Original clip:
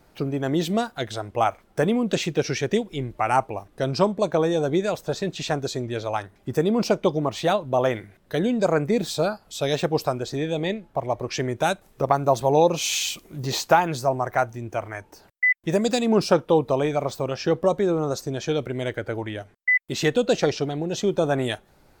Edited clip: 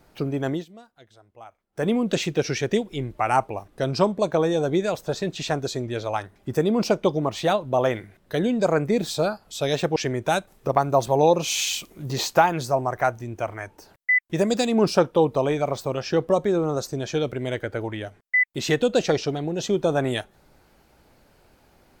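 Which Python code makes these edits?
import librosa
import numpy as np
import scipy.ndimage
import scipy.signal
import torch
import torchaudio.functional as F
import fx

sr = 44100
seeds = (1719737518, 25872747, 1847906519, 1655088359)

y = fx.edit(x, sr, fx.fade_down_up(start_s=0.48, length_s=1.41, db=-23.0, fade_s=0.17),
    fx.cut(start_s=9.96, length_s=1.34), tone=tone)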